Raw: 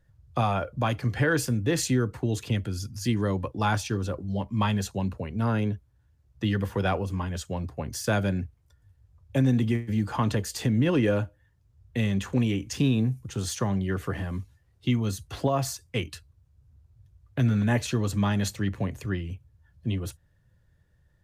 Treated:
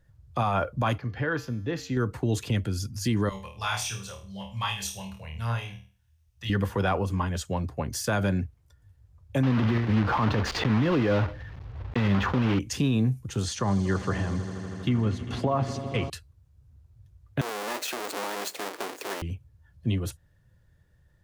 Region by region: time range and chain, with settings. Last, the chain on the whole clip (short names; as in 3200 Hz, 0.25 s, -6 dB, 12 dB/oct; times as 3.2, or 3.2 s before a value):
0.98–1.97 running mean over 5 samples + resonator 91 Hz, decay 0.85 s, harmonics odd
3.29–6.5 passive tone stack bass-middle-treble 10-0-10 + doubler 26 ms -6 dB + flutter echo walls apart 4.4 m, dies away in 0.4 s
9.43–12.6 block floating point 3-bit + air absorption 270 m + fast leveller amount 50%
13.43–16.1 treble ducked by the level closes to 1800 Hz, closed at -22 dBFS + swelling echo 80 ms, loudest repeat 5, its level -18 dB
17.41–19.22 half-waves squared off + HPF 330 Hz 24 dB/oct + compressor 8:1, threshold -30 dBFS
whole clip: dynamic EQ 1100 Hz, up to +5 dB, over -40 dBFS, Q 1.4; limiter -18 dBFS; gain +2 dB